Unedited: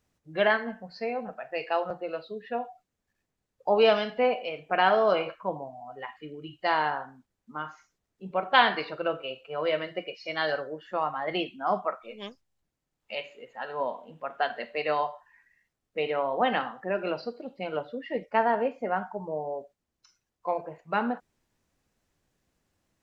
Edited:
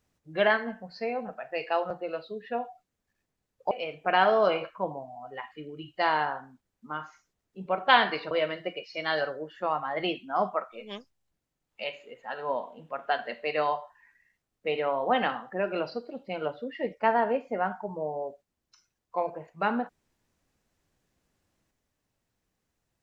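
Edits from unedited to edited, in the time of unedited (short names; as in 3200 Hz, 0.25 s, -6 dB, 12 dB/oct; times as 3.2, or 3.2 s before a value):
3.71–4.36 cut
8.96–9.62 cut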